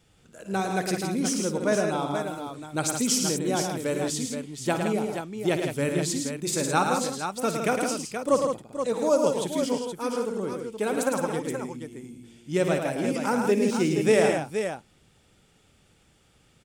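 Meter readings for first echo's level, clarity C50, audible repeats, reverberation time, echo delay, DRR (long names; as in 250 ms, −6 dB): −12.0 dB, no reverb audible, 4, no reverb audible, 57 ms, no reverb audible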